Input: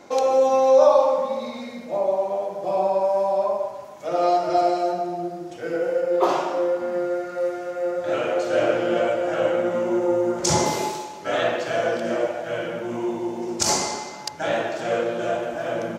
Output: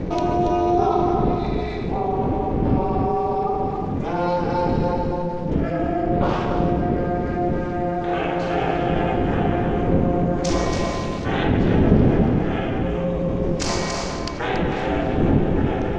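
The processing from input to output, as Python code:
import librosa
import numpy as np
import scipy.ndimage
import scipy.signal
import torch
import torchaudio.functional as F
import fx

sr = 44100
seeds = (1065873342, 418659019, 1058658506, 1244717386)

p1 = fx.dmg_wind(x, sr, seeds[0], corner_hz=310.0, level_db=-26.0)
p2 = scipy.signal.sosfilt(scipy.signal.butter(2, 2600.0, 'lowpass', fs=sr, output='sos'), p1)
p3 = fx.peak_eq(p2, sr, hz=800.0, db=-11.5, octaves=2.8)
p4 = p3 * np.sin(2.0 * np.pi * 180.0 * np.arange(len(p3)) / sr)
p5 = p4 + fx.echo_single(p4, sr, ms=281, db=-7.5, dry=0)
p6 = fx.env_flatten(p5, sr, amount_pct=50)
y = F.gain(torch.from_numpy(p6), 1.5).numpy()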